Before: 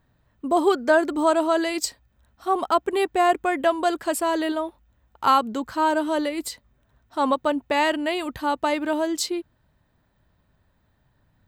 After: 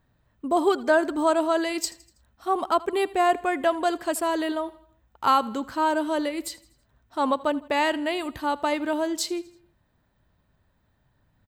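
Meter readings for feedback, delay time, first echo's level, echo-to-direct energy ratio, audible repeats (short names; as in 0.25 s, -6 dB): 49%, 81 ms, -20.5 dB, -19.5 dB, 3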